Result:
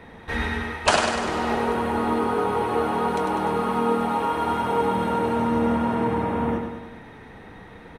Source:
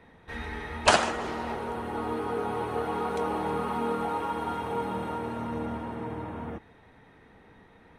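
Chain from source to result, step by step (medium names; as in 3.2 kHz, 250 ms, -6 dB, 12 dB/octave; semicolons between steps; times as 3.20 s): gain riding within 5 dB 0.5 s; feedback delay 99 ms, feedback 59%, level -6 dB; trim +5.5 dB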